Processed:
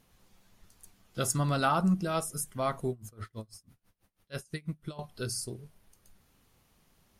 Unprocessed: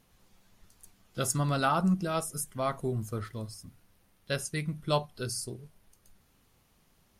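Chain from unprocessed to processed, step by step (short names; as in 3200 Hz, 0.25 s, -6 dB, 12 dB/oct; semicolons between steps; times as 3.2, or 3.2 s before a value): 2.9–4.99 dB-linear tremolo 6.1 Hz, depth 26 dB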